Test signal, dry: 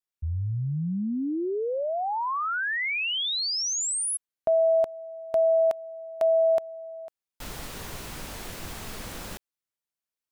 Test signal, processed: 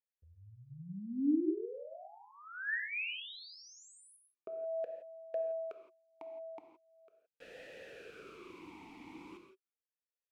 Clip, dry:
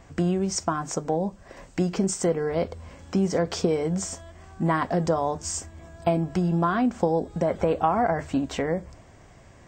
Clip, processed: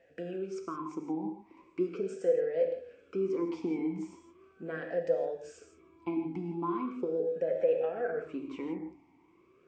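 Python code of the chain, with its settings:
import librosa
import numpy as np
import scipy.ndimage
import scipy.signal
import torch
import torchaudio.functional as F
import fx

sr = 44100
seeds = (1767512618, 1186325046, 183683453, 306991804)

y = fx.rev_gated(x, sr, seeds[0], gate_ms=190, shape='flat', drr_db=4.5)
y = fx.vowel_sweep(y, sr, vowels='e-u', hz=0.39)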